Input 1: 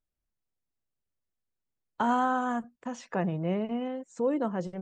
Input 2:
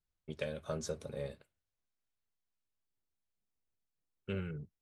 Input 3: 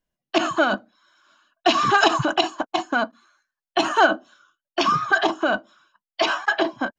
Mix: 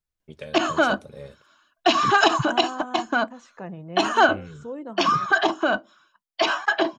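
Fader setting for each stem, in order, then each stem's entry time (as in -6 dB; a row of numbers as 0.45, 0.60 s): -7.0, +0.5, -0.5 dB; 0.45, 0.00, 0.20 s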